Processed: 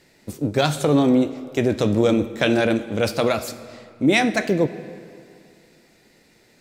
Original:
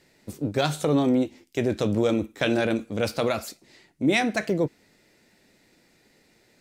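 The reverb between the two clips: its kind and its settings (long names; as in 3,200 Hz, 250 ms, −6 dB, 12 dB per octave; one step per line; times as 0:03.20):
comb and all-pass reverb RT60 2.4 s, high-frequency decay 0.7×, pre-delay 15 ms, DRR 13.5 dB
level +4.5 dB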